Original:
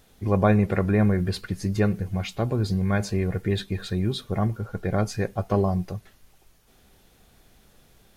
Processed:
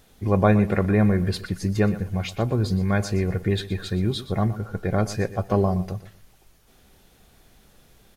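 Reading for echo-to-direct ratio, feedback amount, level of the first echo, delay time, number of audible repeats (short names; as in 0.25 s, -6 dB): -14.5 dB, 24%, -15.0 dB, 0.12 s, 2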